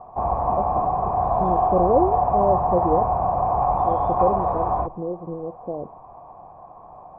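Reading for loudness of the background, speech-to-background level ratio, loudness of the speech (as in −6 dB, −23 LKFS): −22.0 LKFS, −4.5 dB, −26.5 LKFS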